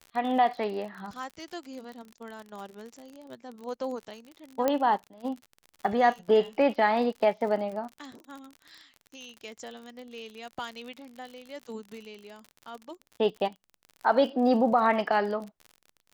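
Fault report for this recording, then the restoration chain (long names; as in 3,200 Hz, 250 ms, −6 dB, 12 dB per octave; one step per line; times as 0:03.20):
surface crackle 49 per second −37 dBFS
0:04.68: click −12 dBFS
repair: click removal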